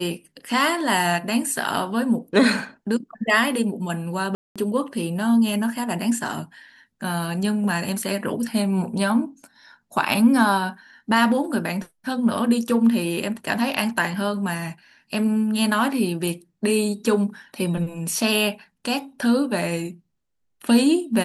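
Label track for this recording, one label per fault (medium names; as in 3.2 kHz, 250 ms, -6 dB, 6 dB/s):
4.350000	4.560000	dropout 206 ms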